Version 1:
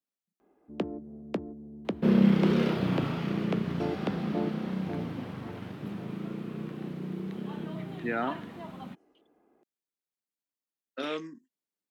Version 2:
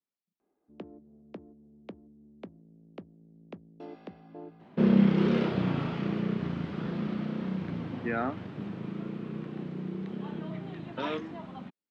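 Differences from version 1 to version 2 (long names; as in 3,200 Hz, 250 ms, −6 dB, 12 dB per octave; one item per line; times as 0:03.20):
first sound −11.5 dB
second sound: entry +2.75 s
master: add high-frequency loss of the air 99 metres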